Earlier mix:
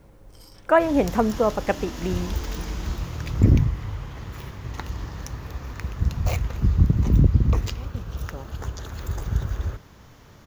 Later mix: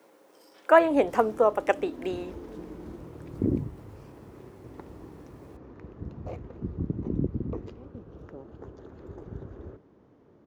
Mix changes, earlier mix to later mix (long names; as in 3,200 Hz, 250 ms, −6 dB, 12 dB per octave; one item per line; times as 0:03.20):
speech: add high-pass filter 300 Hz 24 dB per octave
first sound −10.5 dB
second sound: add resonant band-pass 350 Hz, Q 1.8